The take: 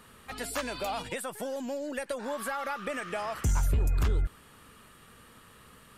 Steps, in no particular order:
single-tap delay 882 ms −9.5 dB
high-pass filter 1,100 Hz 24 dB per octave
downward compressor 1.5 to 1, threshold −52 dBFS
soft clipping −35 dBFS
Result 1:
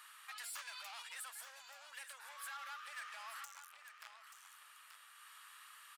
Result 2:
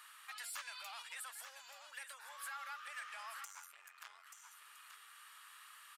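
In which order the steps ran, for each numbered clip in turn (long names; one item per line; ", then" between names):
soft clipping, then single-tap delay, then downward compressor, then high-pass filter
downward compressor, then single-tap delay, then soft clipping, then high-pass filter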